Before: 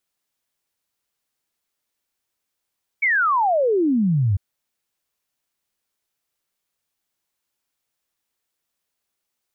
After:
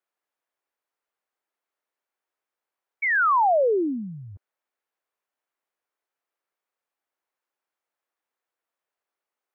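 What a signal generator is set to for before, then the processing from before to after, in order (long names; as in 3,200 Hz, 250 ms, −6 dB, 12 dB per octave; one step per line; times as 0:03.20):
exponential sine sweep 2,300 Hz → 91 Hz 1.35 s −15.5 dBFS
three-way crossover with the lows and the highs turned down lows −23 dB, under 320 Hz, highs −15 dB, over 2,100 Hz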